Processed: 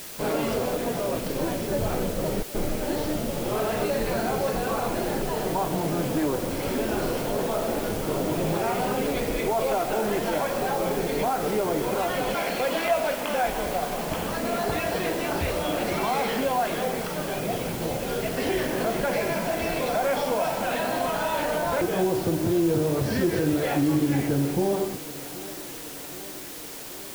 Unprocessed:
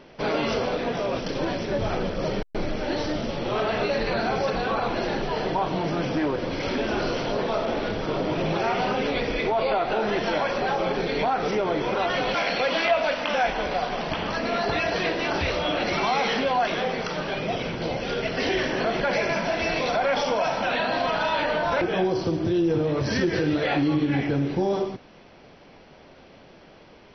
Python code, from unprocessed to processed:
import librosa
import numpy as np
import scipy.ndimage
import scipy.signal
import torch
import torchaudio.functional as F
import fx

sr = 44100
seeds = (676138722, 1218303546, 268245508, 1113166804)

y = fx.tilt_shelf(x, sr, db=4.0, hz=1200.0)
y = fx.echo_thinned(y, sr, ms=776, feedback_pct=76, hz=170.0, wet_db=-17)
y = fx.quant_dither(y, sr, seeds[0], bits=6, dither='triangular')
y = y * 10.0 ** (-3.5 / 20.0)